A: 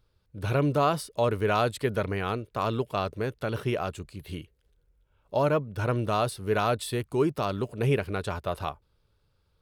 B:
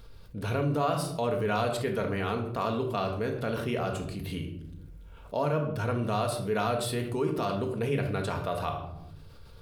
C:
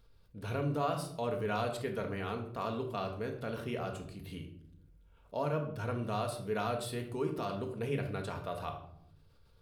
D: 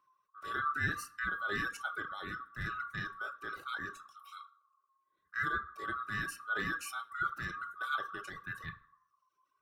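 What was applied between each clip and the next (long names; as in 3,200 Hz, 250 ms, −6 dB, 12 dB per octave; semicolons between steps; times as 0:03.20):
rectangular room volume 780 cubic metres, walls furnished, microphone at 1.7 metres; envelope flattener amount 50%; level −7.5 dB
expander for the loud parts 1.5 to 1, over −44 dBFS; level −4.5 dB
neighbouring bands swapped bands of 1,000 Hz; reverb reduction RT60 1.1 s; multiband upward and downward expander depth 40%; level −1 dB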